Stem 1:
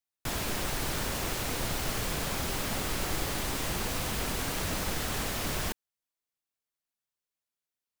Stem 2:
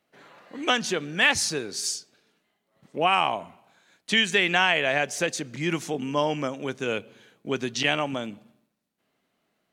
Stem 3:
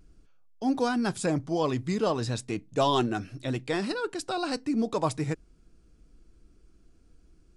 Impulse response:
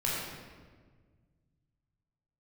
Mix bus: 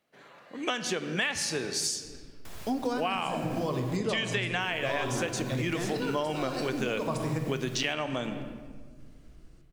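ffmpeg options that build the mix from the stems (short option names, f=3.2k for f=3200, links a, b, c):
-filter_complex "[0:a]alimiter=level_in=1dB:limit=-24dB:level=0:latency=1:release=155,volume=-1dB,adelay=2200,volume=-12dB,asplit=3[a][b][c];[a]atrim=end=3.97,asetpts=PTS-STARTPTS,afade=t=out:st=3.966:d=0.004:c=hsin[d];[b]atrim=start=3.97:end=4.6,asetpts=PTS-STARTPTS,volume=0[e];[c]atrim=start=4.6,asetpts=PTS-STARTPTS,afade=t=in:d=0.004:c=hsin[f];[d][e][f]concat=n=3:v=0:a=1,asplit=2[g][h];[h]volume=-17dB[i];[1:a]dynaudnorm=f=580:g=3:m=8dB,volume=-3.5dB,asplit=3[j][k][l];[k]volume=-17dB[m];[2:a]adelay=2050,volume=1.5dB,asplit=2[n][o];[o]volume=-11dB[p];[l]apad=whole_len=423989[q];[n][q]sidechaincompress=threshold=-24dB:ratio=8:attack=16:release=902[r];[3:a]atrim=start_sample=2205[s];[i][m][p]amix=inputs=3:normalize=0[t];[t][s]afir=irnorm=-1:irlink=0[u];[g][j][r][u]amix=inputs=4:normalize=0,acompressor=threshold=-27dB:ratio=6"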